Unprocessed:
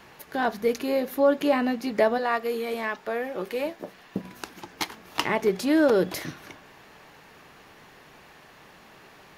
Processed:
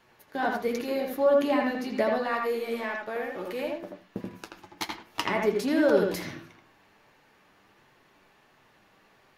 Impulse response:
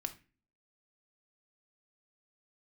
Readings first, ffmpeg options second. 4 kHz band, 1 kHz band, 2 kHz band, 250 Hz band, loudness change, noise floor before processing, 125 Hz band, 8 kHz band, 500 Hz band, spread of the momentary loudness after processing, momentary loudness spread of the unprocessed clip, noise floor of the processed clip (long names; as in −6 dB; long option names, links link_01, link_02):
−3.0 dB, −2.0 dB, −2.0 dB, −3.0 dB, −2.0 dB, −52 dBFS, −2.0 dB, −4.0 dB, −1.5 dB, 17 LU, 16 LU, −62 dBFS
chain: -filter_complex "[0:a]agate=range=-8dB:threshold=-38dB:ratio=16:detection=peak,flanger=delay=7.5:depth=3.3:regen=46:speed=1.4:shape=triangular,asplit=2[link_01][link_02];[1:a]atrim=start_sample=2205,lowpass=3900,adelay=81[link_03];[link_02][link_03]afir=irnorm=-1:irlink=0,volume=-1.5dB[link_04];[link_01][link_04]amix=inputs=2:normalize=0"